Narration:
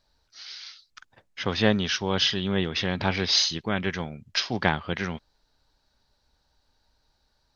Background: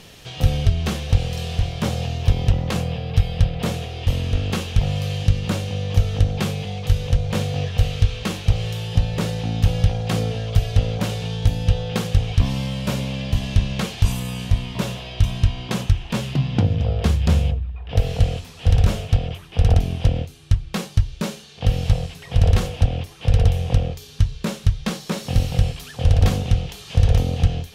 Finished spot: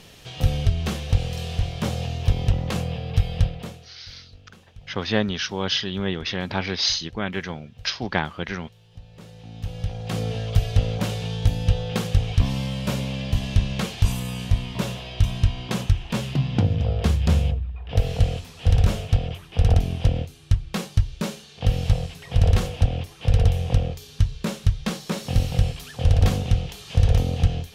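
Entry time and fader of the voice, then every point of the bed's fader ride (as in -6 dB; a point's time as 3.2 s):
3.50 s, -0.5 dB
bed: 3.45 s -3 dB
4.01 s -27 dB
8.87 s -27 dB
10.35 s -2 dB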